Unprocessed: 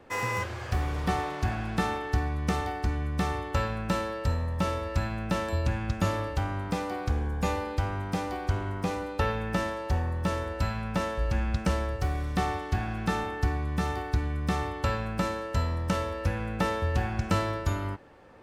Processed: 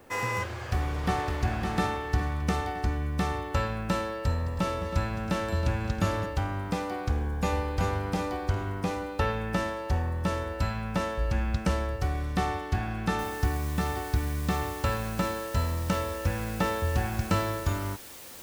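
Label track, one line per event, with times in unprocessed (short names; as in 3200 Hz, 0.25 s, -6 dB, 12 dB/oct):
0.470000	1.300000	echo throw 0.56 s, feedback 45%, level -5 dB
4.150000	6.260000	multi-head echo 0.107 s, heads second and third, feedback 47%, level -13 dB
7.140000	7.780000	echo throw 0.38 s, feedback 40%, level -3.5 dB
13.190000	13.190000	noise floor step -67 dB -46 dB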